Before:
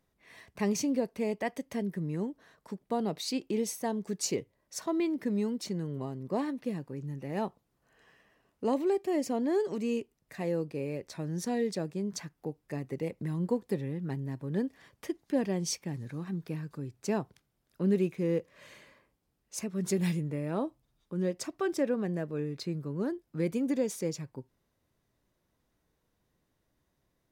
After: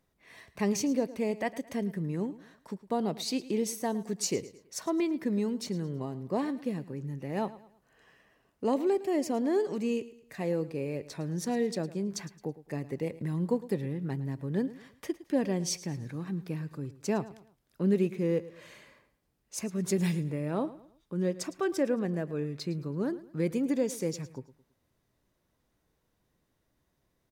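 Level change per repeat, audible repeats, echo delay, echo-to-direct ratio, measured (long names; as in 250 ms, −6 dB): −9.0 dB, 3, 109 ms, −16.5 dB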